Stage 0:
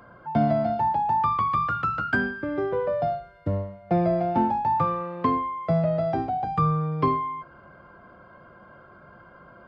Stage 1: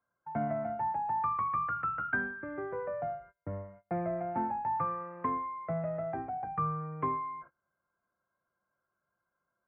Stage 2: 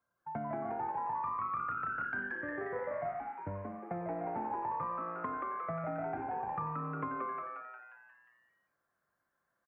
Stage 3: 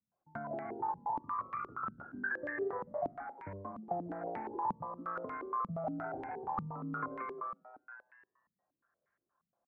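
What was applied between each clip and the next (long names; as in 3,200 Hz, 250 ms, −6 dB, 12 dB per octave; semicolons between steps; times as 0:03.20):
noise gate −42 dBFS, range −26 dB; Butterworth low-pass 2,100 Hz 36 dB per octave; tilt shelving filter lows −5 dB; level −8.5 dB
downward compressor, threshold −36 dBFS, peak gain reduction 9.5 dB; on a send: echo with shifted repeats 178 ms, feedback 54%, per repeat +120 Hz, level −4 dB
low-pass on a step sequencer 8.5 Hz 200–2,100 Hz; level −5.5 dB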